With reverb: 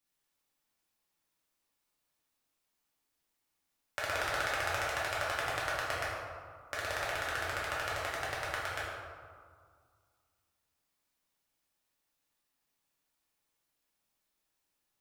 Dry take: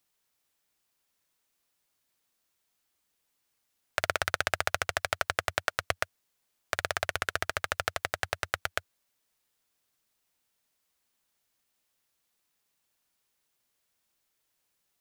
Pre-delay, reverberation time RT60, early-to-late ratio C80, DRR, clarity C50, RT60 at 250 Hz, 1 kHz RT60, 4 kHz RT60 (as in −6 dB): 4 ms, 2.0 s, 1.0 dB, −7.5 dB, −1.0 dB, 2.3 s, 2.0 s, 0.95 s